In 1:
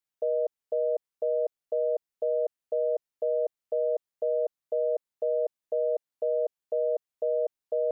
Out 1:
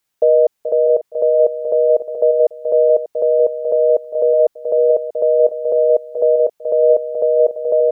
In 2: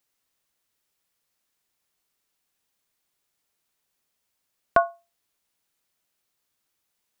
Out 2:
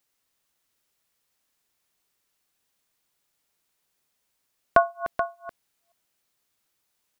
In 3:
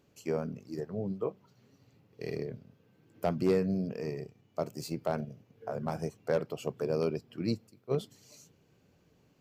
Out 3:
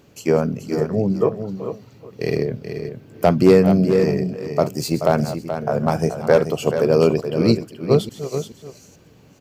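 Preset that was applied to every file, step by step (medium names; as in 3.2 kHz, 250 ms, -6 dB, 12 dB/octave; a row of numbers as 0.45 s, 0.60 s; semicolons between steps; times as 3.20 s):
chunks repeated in reverse 289 ms, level -13.5 dB; on a send: delay 430 ms -9 dB; on the sum: peak normalisation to -3 dBFS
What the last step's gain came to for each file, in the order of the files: +15.5 dB, +1.5 dB, +15.0 dB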